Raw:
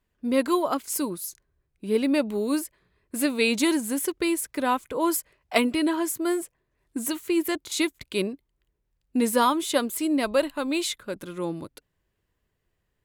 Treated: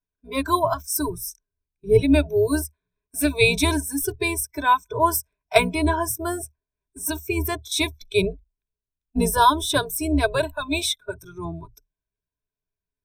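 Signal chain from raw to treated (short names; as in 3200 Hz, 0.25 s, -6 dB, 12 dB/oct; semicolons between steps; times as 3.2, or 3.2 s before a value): octaver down 2 oct, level 0 dB; spectral noise reduction 22 dB; ripple EQ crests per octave 1.6, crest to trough 15 dB; gain +2 dB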